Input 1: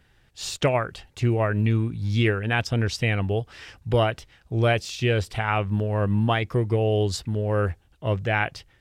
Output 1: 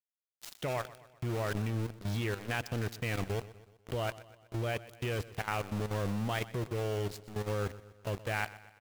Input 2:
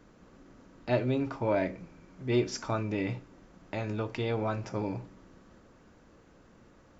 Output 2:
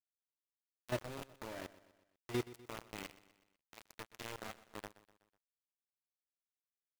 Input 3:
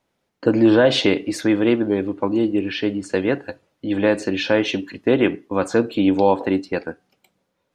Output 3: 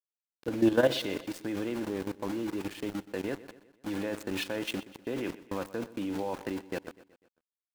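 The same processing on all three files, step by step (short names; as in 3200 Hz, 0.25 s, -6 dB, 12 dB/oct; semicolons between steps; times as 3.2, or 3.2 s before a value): sample gate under -25.5 dBFS; level quantiser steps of 13 dB; feedback echo 0.124 s, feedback 52%, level -17.5 dB; gain -7 dB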